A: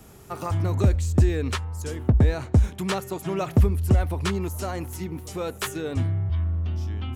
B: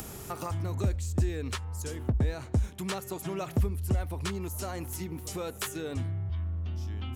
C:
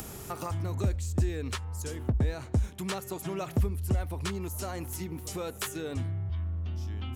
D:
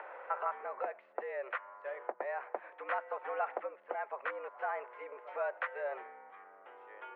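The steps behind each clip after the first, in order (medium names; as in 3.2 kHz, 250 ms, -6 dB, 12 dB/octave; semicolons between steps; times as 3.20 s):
treble shelf 4.1 kHz +5.5 dB; upward compressor, threshold -20 dBFS; trim -9 dB
no audible change
mistuned SSB +120 Hz 450–2000 Hz; trim +3 dB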